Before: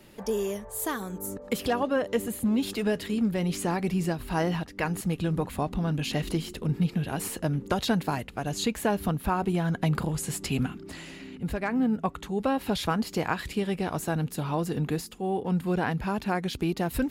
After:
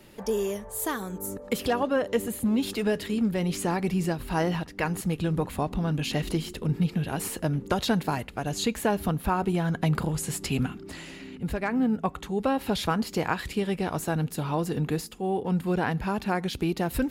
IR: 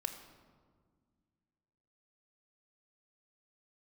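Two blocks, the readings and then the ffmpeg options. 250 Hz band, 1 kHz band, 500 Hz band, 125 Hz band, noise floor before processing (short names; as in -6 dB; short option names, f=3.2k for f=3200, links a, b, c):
+0.5 dB, +1.0 dB, +1.0 dB, +0.5 dB, -46 dBFS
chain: -filter_complex "[0:a]asplit=2[a][b];[1:a]atrim=start_sample=2205,afade=t=out:st=0.18:d=0.01,atrim=end_sample=8379[c];[b][c]afir=irnorm=-1:irlink=0,volume=-16.5dB[d];[a][d]amix=inputs=2:normalize=0"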